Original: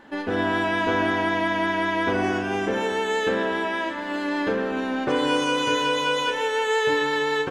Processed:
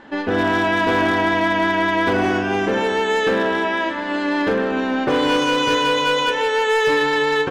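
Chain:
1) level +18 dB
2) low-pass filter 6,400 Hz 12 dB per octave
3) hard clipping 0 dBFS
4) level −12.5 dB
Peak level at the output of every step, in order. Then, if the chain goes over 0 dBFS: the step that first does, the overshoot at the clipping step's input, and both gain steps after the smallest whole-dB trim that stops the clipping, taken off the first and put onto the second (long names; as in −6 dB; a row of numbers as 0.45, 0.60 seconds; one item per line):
+8.0, +8.0, 0.0, −12.5 dBFS
step 1, 8.0 dB
step 1 +10 dB, step 4 −4.5 dB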